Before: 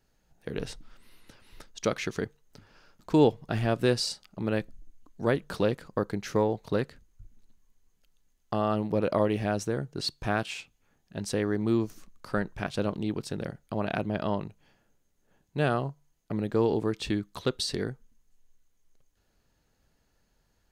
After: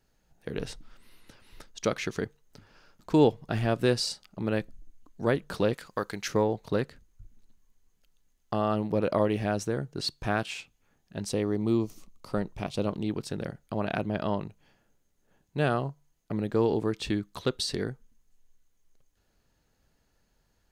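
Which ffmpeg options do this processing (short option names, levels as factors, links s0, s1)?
-filter_complex "[0:a]asettb=1/sr,asplit=3[s0][s1][s2];[s0]atrim=end=5.734[s3];[s1]atrim=start=5.73:end=6.28,asetpts=PTS-STARTPTS,afade=t=in:d=0.004:c=qsin,afade=t=out:st=0.546:d=0.004:c=qsin,tiltshelf=f=820:g=-7.5[s4];[s2]atrim=start=6.276[s5];[s3][s4]acrossfade=d=0.004:c1=hsin:c2=qsin[s6];[s6][s5]acrossfade=d=0.004:c1=qsin:c2=hsin,asettb=1/sr,asplit=3[s7][s8][s9];[s7]atrim=end=11.294[s10];[s8]atrim=start=11.29:end=12.87,asetpts=PTS-STARTPTS,afade=t=in:d=0.004:c=qsin,afade=t=out:st=1.576:d=0.004:c=qsin,equalizer=f=1600:t=o:w=0.38:g=-13.5[s11];[s9]atrim=start=12.866[s12];[s10][s11]acrossfade=d=0.004:c1=hsin:c2=qsin[s13];[s13][s12]acrossfade=d=0.004:c1=qsin:c2=hsin"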